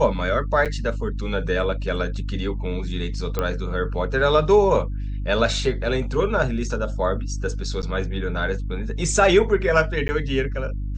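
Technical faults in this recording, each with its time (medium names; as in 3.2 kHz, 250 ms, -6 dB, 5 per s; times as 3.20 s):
hum 50 Hz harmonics 6 -27 dBFS
0.65–0.66 s: dropout 7.5 ms
3.39 s: pop -10 dBFS
7.82–7.83 s: dropout 9.2 ms
10.08–10.09 s: dropout 10 ms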